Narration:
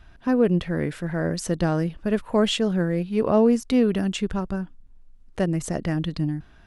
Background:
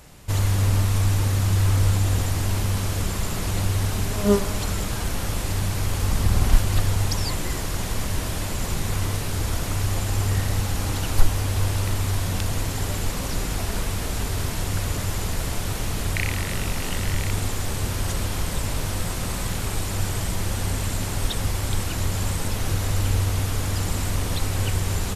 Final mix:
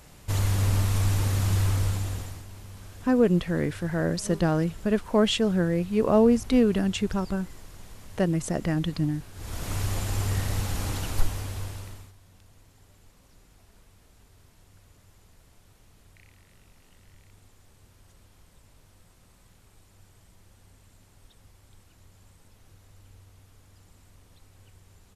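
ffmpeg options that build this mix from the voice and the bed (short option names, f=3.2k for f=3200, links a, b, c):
-filter_complex "[0:a]adelay=2800,volume=-1dB[a];[1:a]volume=12.5dB,afade=t=out:st=1.55:d=0.9:silence=0.141254,afade=t=in:st=9.34:d=0.41:silence=0.158489,afade=t=out:st=10.88:d=1.25:silence=0.0473151[b];[a][b]amix=inputs=2:normalize=0"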